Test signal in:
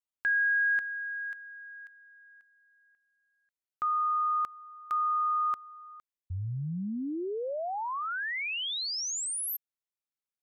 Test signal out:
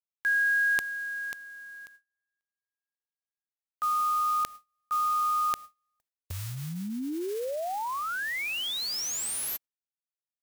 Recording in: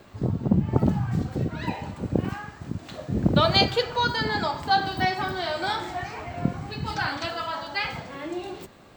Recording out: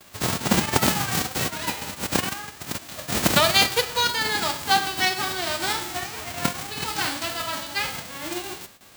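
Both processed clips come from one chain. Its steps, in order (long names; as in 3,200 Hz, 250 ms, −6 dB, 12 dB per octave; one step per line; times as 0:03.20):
spectral envelope flattened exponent 0.3
dynamic equaliser 120 Hz, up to −4 dB, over −40 dBFS, Q 0.91
noise gate with hold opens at −40 dBFS, closes at −43 dBFS, hold 64 ms, range −34 dB
level +1.5 dB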